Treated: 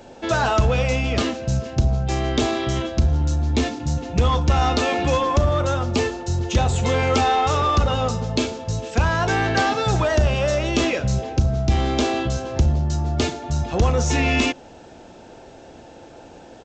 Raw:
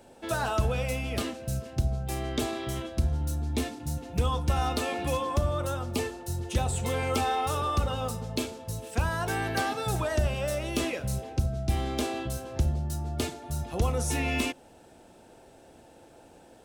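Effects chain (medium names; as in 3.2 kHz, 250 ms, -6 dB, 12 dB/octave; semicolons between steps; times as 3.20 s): in parallel at -3 dB: hard clipper -29 dBFS, distortion -8 dB; on the sum: resampled via 16 kHz; trim +6 dB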